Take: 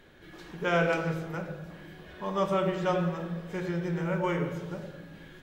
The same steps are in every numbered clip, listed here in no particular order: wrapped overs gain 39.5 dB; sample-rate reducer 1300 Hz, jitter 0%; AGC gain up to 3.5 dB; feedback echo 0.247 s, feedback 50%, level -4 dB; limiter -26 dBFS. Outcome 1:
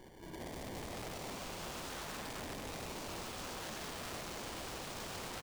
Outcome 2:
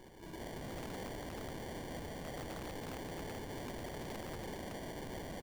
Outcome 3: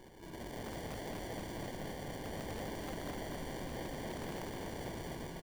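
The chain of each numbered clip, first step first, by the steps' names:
sample-rate reducer > feedback echo > limiter > AGC > wrapped overs; feedback echo > sample-rate reducer > limiter > AGC > wrapped overs; sample-rate reducer > limiter > AGC > wrapped overs > feedback echo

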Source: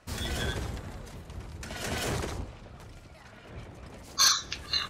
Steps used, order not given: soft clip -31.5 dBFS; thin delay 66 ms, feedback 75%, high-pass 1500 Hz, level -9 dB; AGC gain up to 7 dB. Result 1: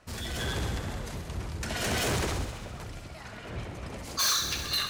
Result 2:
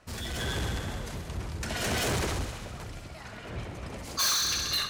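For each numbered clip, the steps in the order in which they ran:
soft clip > AGC > thin delay; thin delay > soft clip > AGC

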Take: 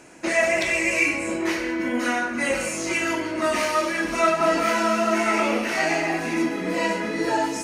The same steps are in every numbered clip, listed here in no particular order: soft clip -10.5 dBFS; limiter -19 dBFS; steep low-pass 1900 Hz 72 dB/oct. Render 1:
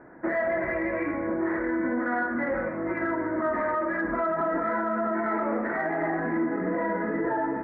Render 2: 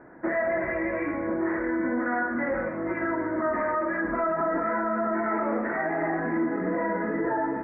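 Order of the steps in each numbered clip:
steep low-pass > limiter > soft clip; soft clip > steep low-pass > limiter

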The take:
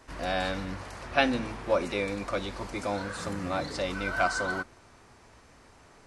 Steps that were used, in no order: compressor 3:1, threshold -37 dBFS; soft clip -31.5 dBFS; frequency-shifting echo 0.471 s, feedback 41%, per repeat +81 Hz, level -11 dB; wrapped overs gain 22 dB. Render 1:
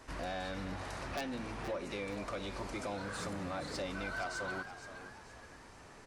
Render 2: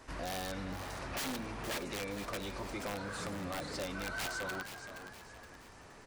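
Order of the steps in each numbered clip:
compressor > wrapped overs > soft clip > frequency-shifting echo; wrapped overs > compressor > frequency-shifting echo > soft clip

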